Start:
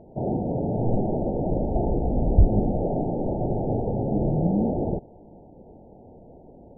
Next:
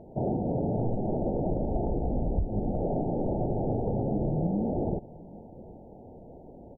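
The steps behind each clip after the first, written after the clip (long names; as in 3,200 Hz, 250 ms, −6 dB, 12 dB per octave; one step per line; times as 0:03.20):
downward compressor 10 to 1, threshold −24 dBFS, peak gain reduction 15 dB
single-tap delay 767 ms −23 dB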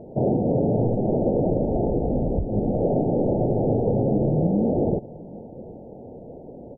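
octave-band graphic EQ 125/250/500 Hz +6/+5/+9 dB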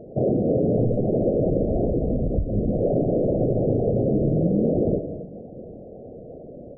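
spectral envelope exaggerated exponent 2
reverb whose tail is shaped and stops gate 290 ms rising, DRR 9.5 dB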